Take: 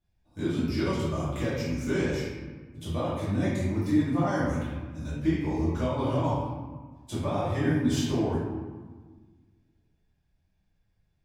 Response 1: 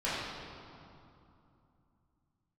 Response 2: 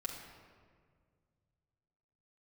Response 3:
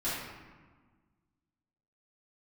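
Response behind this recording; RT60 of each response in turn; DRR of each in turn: 3; 2.7, 1.9, 1.4 s; -12.0, -2.5, -12.0 dB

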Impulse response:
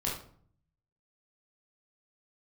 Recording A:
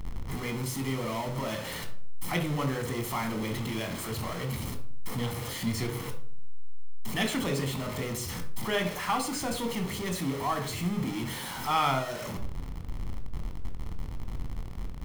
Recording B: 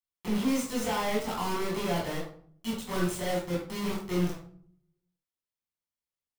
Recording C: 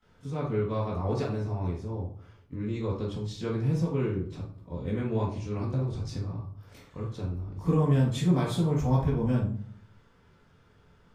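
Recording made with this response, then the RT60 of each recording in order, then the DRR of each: B; 0.55, 0.55, 0.55 s; 5.0, -5.0, -14.5 dB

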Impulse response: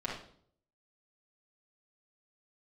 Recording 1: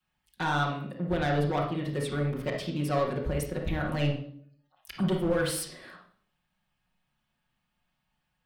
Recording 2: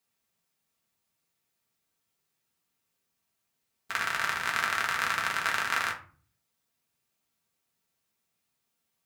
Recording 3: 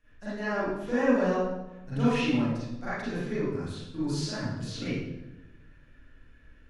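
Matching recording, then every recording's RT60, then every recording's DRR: 1; 0.60, 0.40, 1.0 s; -7.5, -1.0, -13.5 dB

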